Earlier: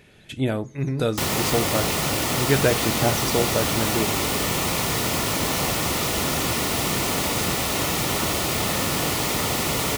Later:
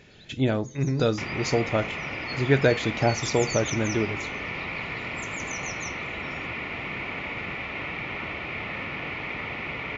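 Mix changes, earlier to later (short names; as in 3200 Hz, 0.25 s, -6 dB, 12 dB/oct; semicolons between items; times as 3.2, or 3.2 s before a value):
first sound +8.5 dB; second sound: add ladder low-pass 2500 Hz, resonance 70%; master: add brick-wall FIR low-pass 7400 Hz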